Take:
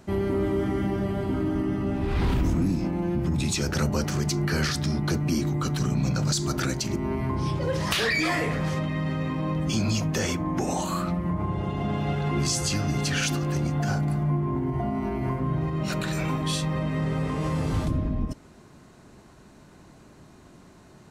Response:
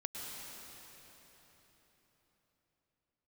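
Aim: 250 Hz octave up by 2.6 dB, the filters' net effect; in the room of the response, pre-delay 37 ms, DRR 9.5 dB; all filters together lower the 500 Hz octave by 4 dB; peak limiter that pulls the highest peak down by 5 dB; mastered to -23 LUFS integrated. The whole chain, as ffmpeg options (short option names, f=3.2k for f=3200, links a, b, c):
-filter_complex "[0:a]equalizer=f=250:t=o:g=6,equalizer=f=500:t=o:g=-9,alimiter=limit=-18.5dB:level=0:latency=1,asplit=2[a][b];[1:a]atrim=start_sample=2205,adelay=37[c];[b][c]afir=irnorm=-1:irlink=0,volume=-10dB[d];[a][d]amix=inputs=2:normalize=0,volume=4dB"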